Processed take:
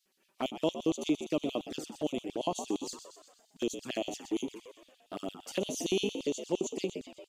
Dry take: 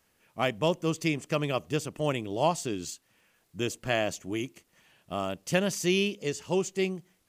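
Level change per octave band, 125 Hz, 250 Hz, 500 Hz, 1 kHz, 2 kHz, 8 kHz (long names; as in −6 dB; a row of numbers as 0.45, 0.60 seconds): −13.0, −2.5, −5.0, −8.0, −12.0, −4.0 decibels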